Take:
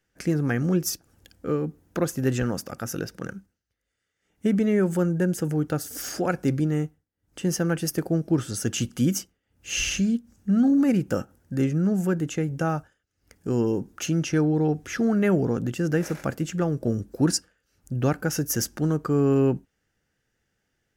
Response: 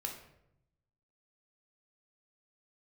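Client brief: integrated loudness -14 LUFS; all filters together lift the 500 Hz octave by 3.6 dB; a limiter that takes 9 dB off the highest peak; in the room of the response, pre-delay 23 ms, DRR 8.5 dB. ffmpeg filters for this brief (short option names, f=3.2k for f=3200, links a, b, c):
-filter_complex "[0:a]equalizer=f=500:t=o:g=4.5,alimiter=limit=-17dB:level=0:latency=1,asplit=2[a][b];[1:a]atrim=start_sample=2205,adelay=23[c];[b][c]afir=irnorm=-1:irlink=0,volume=-8.5dB[d];[a][d]amix=inputs=2:normalize=0,volume=12.5dB"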